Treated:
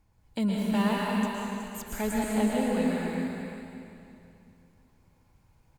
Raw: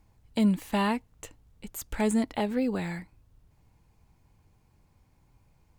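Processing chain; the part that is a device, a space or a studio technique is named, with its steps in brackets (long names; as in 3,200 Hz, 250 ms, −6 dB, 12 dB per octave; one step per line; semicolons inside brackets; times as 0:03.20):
parametric band 1,500 Hz +2.5 dB 0.54 octaves
cave (single-tap delay 370 ms −9.5 dB; convolution reverb RT60 2.6 s, pre-delay 108 ms, DRR −3.5 dB)
level −4.5 dB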